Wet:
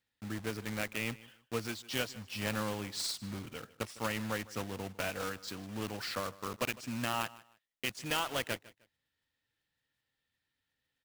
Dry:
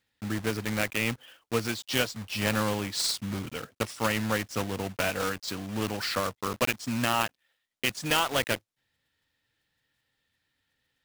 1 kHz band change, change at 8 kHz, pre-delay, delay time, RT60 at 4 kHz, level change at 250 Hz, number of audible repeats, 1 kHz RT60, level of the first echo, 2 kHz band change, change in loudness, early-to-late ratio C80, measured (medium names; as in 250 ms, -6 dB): -8.0 dB, -8.0 dB, no reverb, 154 ms, no reverb, -8.0 dB, 2, no reverb, -20.0 dB, -8.0 dB, -8.0 dB, no reverb